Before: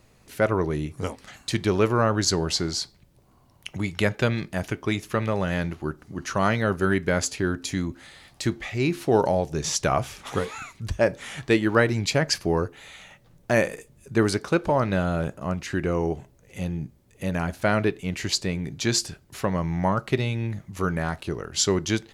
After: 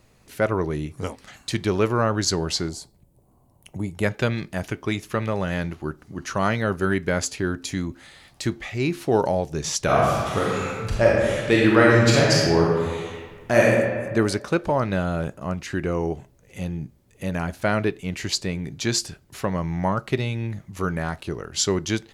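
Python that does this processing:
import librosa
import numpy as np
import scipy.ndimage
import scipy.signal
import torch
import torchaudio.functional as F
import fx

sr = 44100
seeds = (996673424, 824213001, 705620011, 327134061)

y = fx.band_shelf(x, sr, hz=2700.0, db=-12.5, octaves=2.6, at=(2.68, 4.02), fade=0.02)
y = fx.reverb_throw(y, sr, start_s=9.84, length_s=3.87, rt60_s=1.6, drr_db=-4.5)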